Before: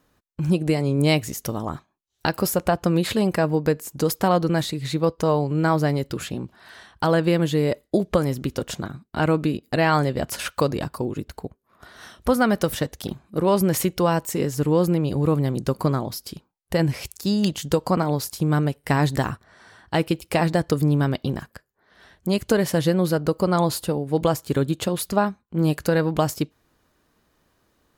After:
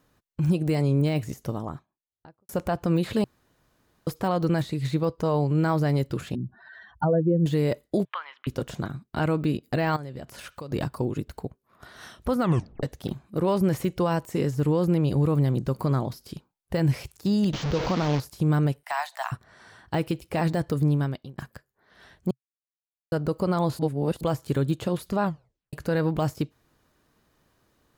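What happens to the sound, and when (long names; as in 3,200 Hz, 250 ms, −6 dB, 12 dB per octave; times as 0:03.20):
0:01.12–0:02.49: fade out and dull
0:03.24–0:04.07: fill with room tone
0:06.35–0:07.46: expanding power law on the bin magnitudes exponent 2.7
0:08.05–0:08.47: Chebyshev band-pass filter 980–3,200 Hz, order 3
0:09.96–0:10.72: downward compressor, threshold −33 dBFS
0:12.40: tape stop 0.43 s
0:17.53–0:18.20: linear delta modulator 32 kbit/s, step −20.5 dBFS
0:18.83–0:19.32: Chebyshev high-pass filter 660 Hz, order 6
0:20.69–0:21.38: fade out
0:22.31–0:23.12: silence
0:23.79–0:24.21: reverse
0:25.23: tape stop 0.50 s
whole clip: parametric band 130 Hz +4.5 dB 0.44 octaves; brickwall limiter −12 dBFS; de-essing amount 90%; level −1.5 dB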